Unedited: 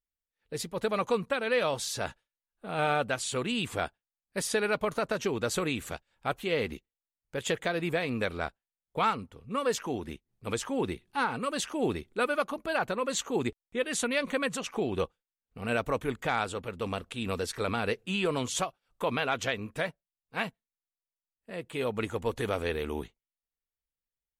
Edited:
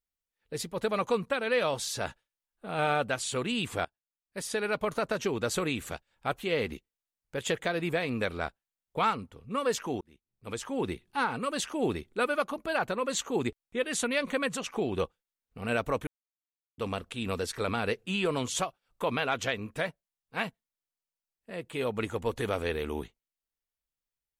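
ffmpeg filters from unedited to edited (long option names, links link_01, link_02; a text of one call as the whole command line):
ffmpeg -i in.wav -filter_complex "[0:a]asplit=5[link_01][link_02][link_03][link_04][link_05];[link_01]atrim=end=3.85,asetpts=PTS-STARTPTS,afade=type=out:start_time=3.846:duration=0.004:curve=hsin:silence=0.105925[link_06];[link_02]atrim=start=3.85:end=10.01,asetpts=PTS-STARTPTS,afade=type=in:duration=1.08:silence=0.105925,afade=type=out:start_time=6.156:duration=0.004:curve=hsin[link_07];[link_03]atrim=start=10.01:end=16.07,asetpts=PTS-STARTPTS,afade=type=in:duration=0.9,afade=type=out:start_time=6.056:duration=0.004:curve=hsin[link_08];[link_04]atrim=start=16.07:end=16.78,asetpts=PTS-STARTPTS,volume=0[link_09];[link_05]atrim=start=16.78,asetpts=PTS-STARTPTS,afade=type=in:duration=0.004:curve=hsin[link_10];[link_06][link_07][link_08][link_09][link_10]concat=n=5:v=0:a=1" out.wav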